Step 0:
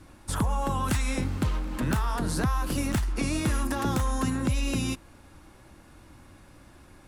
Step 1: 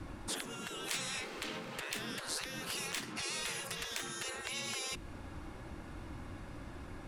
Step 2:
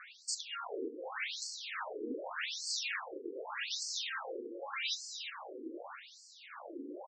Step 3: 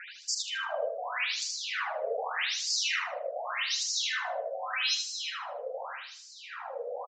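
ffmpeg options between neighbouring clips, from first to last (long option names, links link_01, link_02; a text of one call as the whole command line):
ffmpeg -i in.wav -filter_complex "[0:a]afftfilt=real='re*lt(hypot(re,im),0.0501)':imag='im*lt(hypot(re,im),0.0501)':win_size=1024:overlap=0.75,lowpass=frequency=3000:poles=1,acrossover=split=420|1900[link_01][link_02][link_03];[link_02]acompressor=threshold=-56dB:ratio=6[link_04];[link_01][link_04][link_03]amix=inputs=3:normalize=0,volume=5.5dB" out.wav
ffmpeg -i in.wav -af "asoftclip=type=tanh:threshold=-37dB,aecho=1:1:348|696|1044|1392|1740|2088:0.376|0.203|0.11|0.0592|0.032|0.0173,afftfilt=real='re*between(b*sr/1024,340*pow(6100/340,0.5+0.5*sin(2*PI*0.84*pts/sr))/1.41,340*pow(6100/340,0.5+0.5*sin(2*PI*0.84*pts/sr))*1.41)':imag='im*between(b*sr/1024,340*pow(6100/340,0.5+0.5*sin(2*PI*0.84*pts/sr))/1.41,340*pow(6100/340,0.5+0.5*sin(2*PI*0.84*pts/sr))*1.41)':win_size=1024:overlap=0.75,volume=10.5dB" out.wav
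ffmpeg -i in.wav -af "afreqshift=200,aresample=16000,aresample=44100,aecho=1:1:77|154|231|308:0.531|0.143|0.0387|0.0104,volume=7dB" out.wav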